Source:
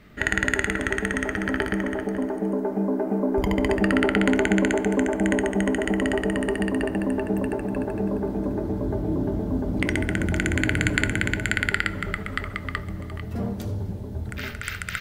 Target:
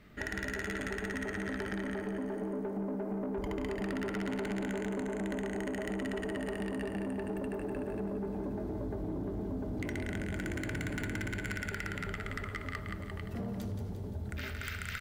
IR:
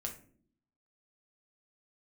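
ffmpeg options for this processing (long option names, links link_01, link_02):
-af "aecho=1:1:174|348|522|696|870:0.447|0.205|0.0945|0.0435|0.02,asoftclip=type=tanh:threshold=-19.5dB,acompressor=threshold=-27dB:ratio=6,volume=-6.5dB"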